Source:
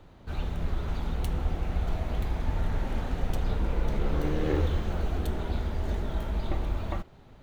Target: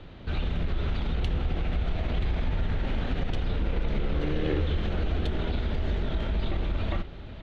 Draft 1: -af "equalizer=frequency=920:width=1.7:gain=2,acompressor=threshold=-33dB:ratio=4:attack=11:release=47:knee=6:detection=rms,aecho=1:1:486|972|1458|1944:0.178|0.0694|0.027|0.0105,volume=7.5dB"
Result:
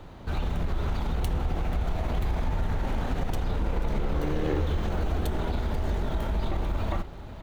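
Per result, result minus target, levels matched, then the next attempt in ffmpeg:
1,000 Hz band +4.5 dB; 4,000 Hz band −3.5 dB
-af "equalizer=frequency=920:width=1.7:gain=-5.5,acompressor=threshold=-33dB:ratio=4:attack=11:release=47:knee=6:detection=rms,aecho=1:1:486|972|1458|1944:0.178|0.0694|0.027|0.0105,volume=7.5dB"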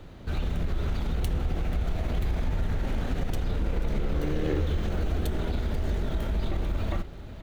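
4,000 Hz band −3.5 dB
-af "equalizer=frequency=920:width=1.7:gain=-5.5,acompressor=threshold=-33dB:ratio=4:attack=11:release=47:knee=6:detection=rms,lowpass=frequency=3400:width_type=q:width=1.6,aecho=1:1:486|972|1458|1944:0.178|0.0694|0.027|0.0105,volume=7.5dB"

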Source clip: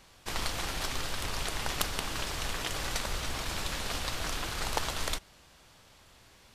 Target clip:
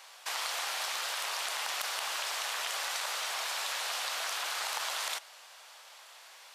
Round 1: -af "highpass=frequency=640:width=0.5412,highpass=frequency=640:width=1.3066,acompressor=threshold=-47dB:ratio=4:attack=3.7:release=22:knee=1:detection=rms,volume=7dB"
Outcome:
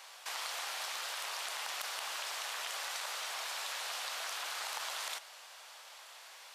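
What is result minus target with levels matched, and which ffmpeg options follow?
downward compressor: peak gain reduction +5 dB
-af "highpass=frequency=640:width=0.5412,highpass=frequency=640:width=1.3066,acompressor=threshold=-40.5dB:ratio=4:attack=3.7:release=22:knee=1:detection=rms,volume=7dB"

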